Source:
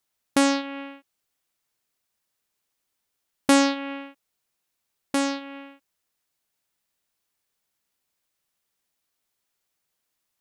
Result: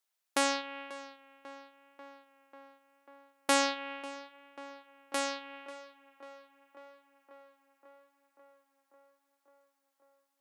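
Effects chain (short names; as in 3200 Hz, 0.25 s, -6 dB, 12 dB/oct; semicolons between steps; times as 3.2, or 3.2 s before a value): HPF 520 Hz 12 dB/oct; tape echo 0.542 s, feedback 78%, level -15 dB, low-pass 3000 Hz; gain -5 dB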